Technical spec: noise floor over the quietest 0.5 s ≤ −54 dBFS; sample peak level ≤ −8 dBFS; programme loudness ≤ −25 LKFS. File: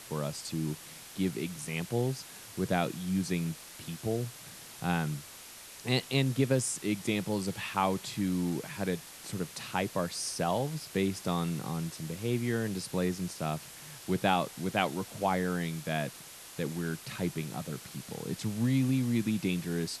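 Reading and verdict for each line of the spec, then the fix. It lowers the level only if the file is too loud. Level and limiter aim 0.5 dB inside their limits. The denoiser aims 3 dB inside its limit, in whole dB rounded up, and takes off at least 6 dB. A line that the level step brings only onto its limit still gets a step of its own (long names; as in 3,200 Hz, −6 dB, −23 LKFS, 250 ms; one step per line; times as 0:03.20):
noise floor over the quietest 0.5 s −49 dBFS: out of spec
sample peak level −11.0 dBFS: in spec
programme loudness −33.0 LKFS: in spec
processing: broadband denoise 8 dB, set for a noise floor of −49 dBFS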